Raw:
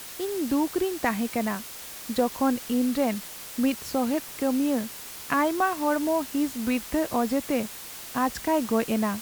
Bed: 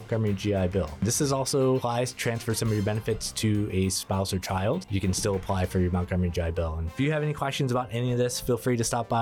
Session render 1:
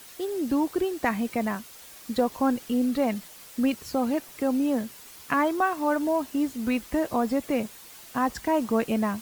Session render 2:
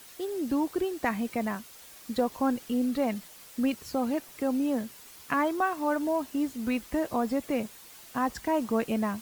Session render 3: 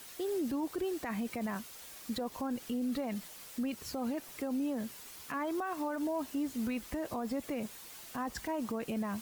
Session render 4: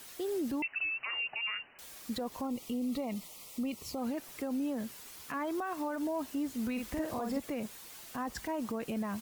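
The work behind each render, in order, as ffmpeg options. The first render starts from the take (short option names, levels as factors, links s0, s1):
-af "afftdn=nr=8:nf=-41"
-af "volume=0.708"
-af "acompressor=threshold=0.0398:ratio=6,alimiter=level_in=1.58:limit=0.0631:level=0:latency=1:release=14,volume=0.631"
-filter_complex "[0:a]asettb=1/sr,asplit=3[s0][s1][s2];[s0]atrim=end=0.624[s3];[s1]atrim=start=0.62:end=1.79,asetpts=PTS-STARTPTS,afade=t=in:d=0.004:c=qsin,afade=t=out:st=1.166:d=0.004:c=qsin,lowpass=f=2600:t=q:w=0.5098,lowpass=f=2600:t=q:w=0.6013,lowpass=f=2600:t=q:w=0.9,lowpass=f=2600:t=q:w=2.563,afreqshift=-3000[s4];[s2]atrim=start=1.786[s5];[s3][s4]acrossfade=d=0.004:c1=hsin:c2=qsin[s6];[s6][s5]acrossfade=d=0.004:c1=qsin:c2=hsin,asettb=1/sr,asplit=3[s7][s8][s9];[s7]atrim=end=2.454[s10];[s8]atrim=start=2.45:end=3.98,asetpts=PTS-STARTPTS,afade=t=in:d=0.004:c=qsin,afade=t=out:st=1.526:d=0.004:c=qsin,asuperstop=centerf=1600:order=4:qfactor=2.3[s11];[s9]atrim=start=3.976[s12];[s10][s11]acrossfade=d=0.004:c1=hsin:c2=qsin[s13];[s13][s12]acrossfade=d=0.004:c1=qsin:c2=hsin,asplit=3[s14][s15][s16];[s14]afade=t=out:st=6.77:d=0.02[s17];[s15]asplit=2[s18][s19];[s19]adelay=48,volume=0.708[s20];[s18][s20]amix=inputs=2:normalize=0,afade=t=in:st=6.77:d=0.02,afade=t=out:st=7.38:d=0.02[s21];[s16]afade=t=in:st=7.38:d=0.02[s22];[s17][s21][s22]amix=inputs=3:normalize=0"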